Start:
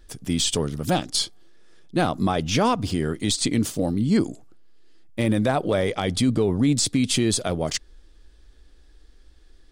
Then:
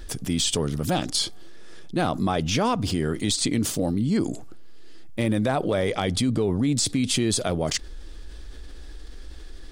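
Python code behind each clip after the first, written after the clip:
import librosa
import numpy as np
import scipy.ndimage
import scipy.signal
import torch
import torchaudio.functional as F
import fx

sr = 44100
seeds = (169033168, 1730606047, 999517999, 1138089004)

y = fx.env_flatten(x, sr, amount_pct=50)
y = y * librosa.db_to_amplitude(-4.0)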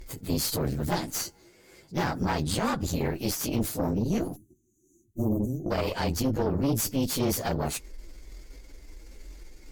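y = fx.partial_stretch(x, sr, pct=112)
y = fx.spec_erase(y, sr, start_s=4.36, length_s=1.35, low_hz=400.0, high_hz=5800.0)
y = fx.cheby_harmonics(y, sr, harmonics=(4, 5), levels_db=(-10, -23), full_scale_db=-14.0)
y = y * librosa.db_to_amplitude(-3.5)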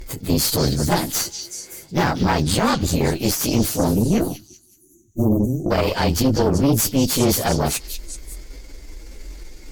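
y = fx.echo_stepped(x, sr, ms=191, hz=4300.0, octaves=0.7, feedback_pct=70, wet_db=-4.5)
y = y * librosa.db_to_amplitude(9.0)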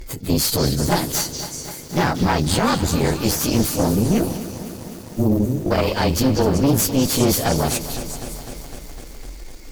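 y = fx.echo_crushed(x, sr, ms=253, feedback_pct=80, bits=6, wet_db=-13.0)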